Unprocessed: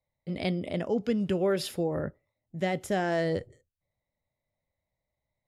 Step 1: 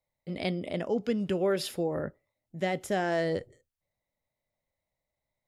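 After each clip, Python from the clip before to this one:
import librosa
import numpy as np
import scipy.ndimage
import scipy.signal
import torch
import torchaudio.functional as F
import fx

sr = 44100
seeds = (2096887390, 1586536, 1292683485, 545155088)

y = fx.peak_eq(x, sr, hz=87.0, db=-5.5, octaves=2.1)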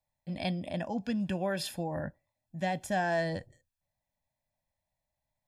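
y = x + 0.8 * np.pad(x, (int(1.2 * sr / 1000.0), 0))[:len(x)]
y = F.gain(torch.from_numpy(y), -3.0).numpy()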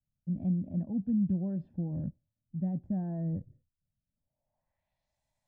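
y = fx.filter_sweep_lowpass(x, sr, from_hz=210.0, to_hz=8100.0, start_s=4.07, end_s=5.2, q=1.3)
y = F.gain(torch.from_numpy(y), 2.0).numpy()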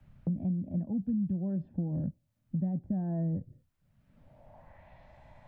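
y = fx.band_squash(x, sr, depth_pct=100)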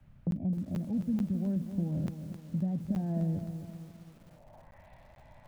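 y = fx.buffer_crackle(x, sr, first_s=0.31, period_s=0.44, block=512, kind='zero')
y = fx.echo_crushed(y, sr, ms=262, feedback_pct=55, bits=9, wet_db=-9)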